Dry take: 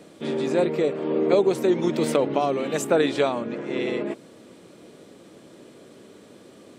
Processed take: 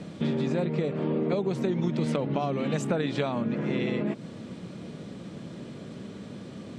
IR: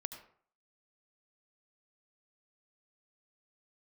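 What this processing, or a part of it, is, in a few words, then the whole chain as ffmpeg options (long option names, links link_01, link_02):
jukebox: -af "lowpass=6000,lowshelf=frequency=250:width_type=q:width=1.5:gain=9,acompressor=threshold=-29dB:ratio=5,volume=4dB"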